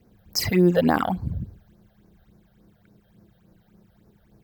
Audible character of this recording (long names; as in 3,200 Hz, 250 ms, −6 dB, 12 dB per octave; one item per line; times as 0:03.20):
phaser sweep stages 8, 3.5 Hz, lowest notch 290–3,200 Hz